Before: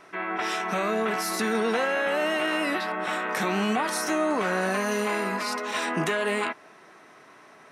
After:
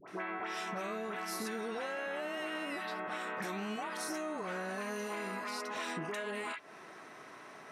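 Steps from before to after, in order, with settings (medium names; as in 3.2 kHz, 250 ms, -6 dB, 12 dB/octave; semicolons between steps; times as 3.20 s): phase dispersion highs, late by 78 ms, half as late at 1.1 kHz; compression 6:1, threshold -37 dBFS, peak gain reduction 14.5 dB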